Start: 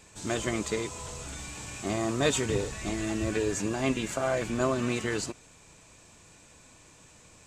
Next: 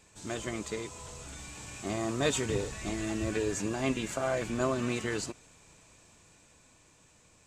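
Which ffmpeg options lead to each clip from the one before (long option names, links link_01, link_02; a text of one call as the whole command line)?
ffmpeg -i in.wav -af "dynaudnorm=framelen=300:gausssize=11:maxgain=3.5dB,volume=-6dB" out.wav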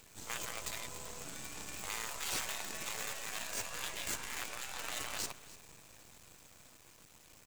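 ffmpeg -i in.wav -af "afftfilt=real='re*lt(hypot(re,im),0.0316)':imag='im*lt(hypot(re,im),0.0316)':win_size=1024:overlap=0.75,acrusher=bits=7:dc=4:mix=0:aa=0.000001,aecho=1:1:295:0.126,volume=3.5dB" out.wav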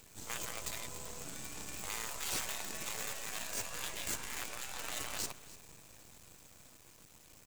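ffmpeg -i in.wav -af "equalizer=frequency=1800:width=0.31:gain=-3.5,volume=2dB" out.wav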